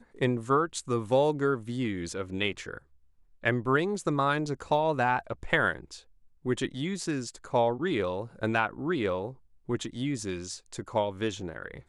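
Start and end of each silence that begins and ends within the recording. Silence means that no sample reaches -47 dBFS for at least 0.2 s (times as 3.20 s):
2.78–3.43 s
6.01–6.45 s
9.34–9.68 s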